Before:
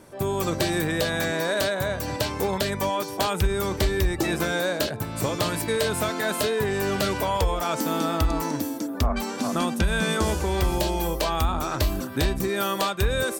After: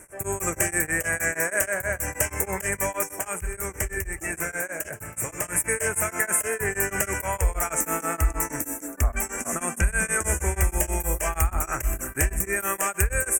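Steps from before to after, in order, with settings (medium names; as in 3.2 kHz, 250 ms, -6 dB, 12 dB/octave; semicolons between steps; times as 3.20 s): graphic EQ 125/250/500/1000/2000/4000/8000 Hz -9/-12/-5/-9/+6/-12/+11 dB; compression, threshold -24 dBFS, peak gain reduction 5.5 dB; 3.11–5.55 s: flange 1.7 Hz, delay 4.2 ms, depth 5.7 ms, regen -68%; Butterworth band-stop 4 kHz, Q 0.97; feedback delay 125 ms, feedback 47%, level -16 dB; tremolo of two beating tones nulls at 6.3 Hz; trim +8 dB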